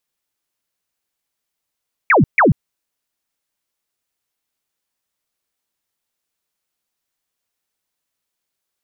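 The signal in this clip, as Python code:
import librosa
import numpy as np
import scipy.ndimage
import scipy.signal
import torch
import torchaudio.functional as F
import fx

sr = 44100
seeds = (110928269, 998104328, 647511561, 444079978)

y = fx.laser_zaps(sr, level_db=-8, start_hz=2500.0, end_hz=110.0, length_s=0.14, wave='sine', shots=2, gap_s=0.14)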